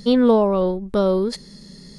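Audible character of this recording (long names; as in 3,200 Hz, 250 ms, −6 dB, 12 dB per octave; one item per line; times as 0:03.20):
background noise floor −44 dBFS
spectral slope −5.0 dB per octave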